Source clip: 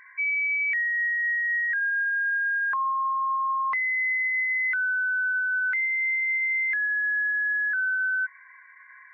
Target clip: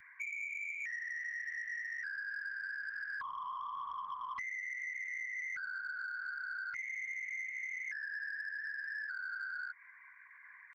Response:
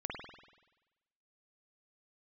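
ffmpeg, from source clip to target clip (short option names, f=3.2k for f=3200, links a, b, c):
-af "atempo=0.85,afftfilt=real='hypot(re,im)*cos(2*PI*random(0))':imag='hypot(re,im)*sin(2*PI*random(1))':win_size=512:overlap=0.75,equalizer=f=680:w=0.76:g=-8,acompressor=threshold=-38dB:ratio=12,bass=f=250:g=12,treble=f=4k:g=3,asoftclip=type=tanh:threshold=-35.5dB,volume=1.5dB"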